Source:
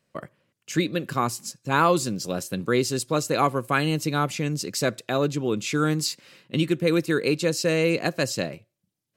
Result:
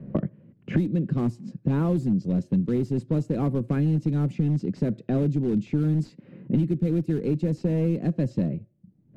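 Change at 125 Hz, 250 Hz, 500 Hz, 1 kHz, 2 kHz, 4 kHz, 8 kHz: +5.5 dB, +2.5 dB, −6.0 dB, −16.0 dB, −17.5 dB, below −20 dB, below −25 dB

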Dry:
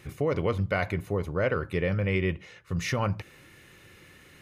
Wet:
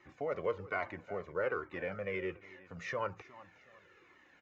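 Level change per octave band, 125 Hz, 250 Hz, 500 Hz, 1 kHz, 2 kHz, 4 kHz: −21.0, −15.0, −7.5, −6.0, −7.5, −14.5 decibels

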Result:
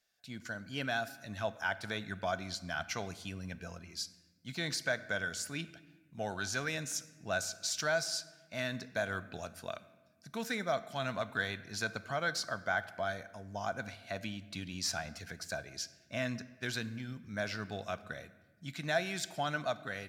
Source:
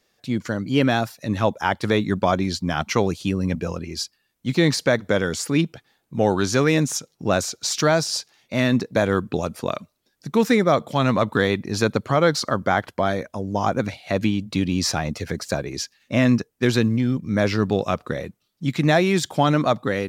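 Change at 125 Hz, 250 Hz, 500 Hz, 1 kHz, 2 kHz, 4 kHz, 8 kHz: −20.0, −22.0, −17.0, −15.0, −9.0, −11.0, −10.5 decibels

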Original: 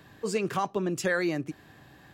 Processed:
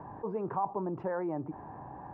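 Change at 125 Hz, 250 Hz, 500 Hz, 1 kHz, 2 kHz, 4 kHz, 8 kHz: −5.0 dB, −5.5 dB, −5.0 dB, −1.0 dB, −18.5 dB, below −35 dB, below −40 dB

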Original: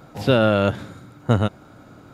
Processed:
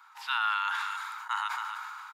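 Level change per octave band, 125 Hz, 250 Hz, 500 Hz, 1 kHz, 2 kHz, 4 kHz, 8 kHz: below −40 dB, below −40 dB, below −40 dB, −2.0 dB, −1.0 dB, −5.5 dB, can't be measured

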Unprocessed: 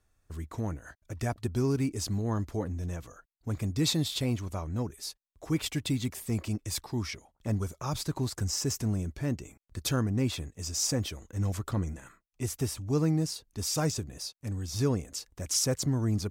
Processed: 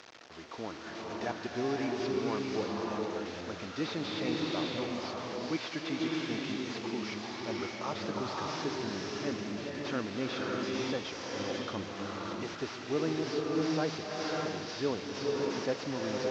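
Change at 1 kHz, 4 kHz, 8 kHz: +4.5, −3.0, −14.0 decibels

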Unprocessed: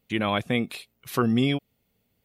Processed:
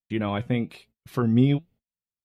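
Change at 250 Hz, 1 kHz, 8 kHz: +1.5 dB, −4.5 dB, below −10 dB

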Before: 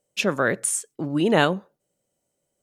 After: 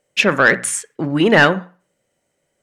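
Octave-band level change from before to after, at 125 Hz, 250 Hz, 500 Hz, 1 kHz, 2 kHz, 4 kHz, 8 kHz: +6.0, +6.0, +6.0, +7.0, +12.0, +7.5, +3.0 decibels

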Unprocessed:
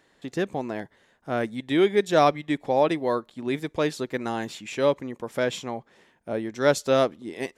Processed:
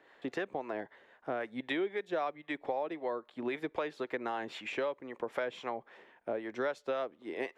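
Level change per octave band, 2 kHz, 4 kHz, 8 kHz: −7.5 dB, −12.5 dB, below −20 dB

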